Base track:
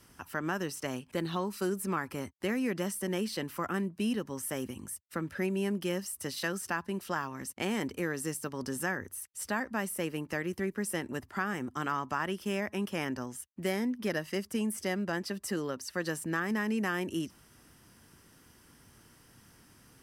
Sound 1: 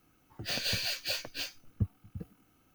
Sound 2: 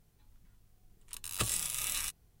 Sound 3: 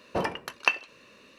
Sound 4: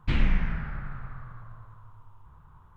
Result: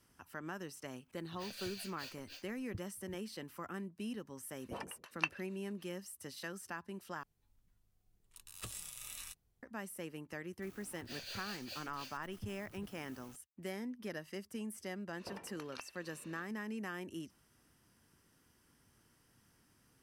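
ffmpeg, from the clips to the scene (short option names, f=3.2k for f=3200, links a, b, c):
-filter_complex "[1:a]asplit=2[a][b];[3:a]asplit=2[c][d];[0:a]volume=-11dB[e];[c]acrossover=split=520[f][g];[f]aeval=exprs='val(0)*(1-1/2+1/2*cos(2*PI*6.7*n/s))':c=same[h];[g]aeval=exprs='val(0)*(1-1/2-1/2*cos(2*PI*6.7*n/s))':c=same[i];[h][i]amix=inputs=2:normalize=0[j];[2:a]asoftclip=type=tanh:threshold=-21dB[k];[b]aeval=exprs='val(0)+0.5*0.0126*sgn(val(0))':c=same[l];[d]acompressor=threshold=-38dB:ratio=12:attack=2.9:release=310:knee=1:detection=peak[m];[e]asplit=2[n][o];[n]atrim=end=7.234[p];[k]atrim=end=2.4,asetpts=PTS-STARTPTS,volume=-12dB[q];[o]atrim=start=9.626[r];[a]atrim=end=2.74,asetpts=PTS-STARTPTS,volume=-15.5dB,afade=t=in:d=0.004:c=hsin,afade=t=out:st=2.736:d=0.004:c=hsin,adelay=930[s];[j]atrim=end=1.38,asetpts=PTS-STARTPTS,volume=-11dB,afade=t=in:d=0.004:c=hsin,afade=t=out:st=1.376:d=0.004:c=hsin,adelay=4560[t];[l]atrim=end=2.74,asetpts=PTS-STARTPTS,volume=-16dB,afade=t=in:d=0.004:c=hsin,afade=t=out:st=2.736:d=0.004:c=hsin,adelay=10620[u];[m]atrim=end=1.38,asetpts=PTS-STARTPTS,volume=-5.5dB,afade=t=in:d=0.1,afade=t=out:st=1.28:d=0.1,adelay=15120[v];[p][q]acrossfade=d=0.004:c1=hsin:c2=hsin[w];[w][r]acrossfade=d=0.004:c1=hsin:c2=hsin[x];[x][s][t][u][v]amix=inputs=5:normalize=0"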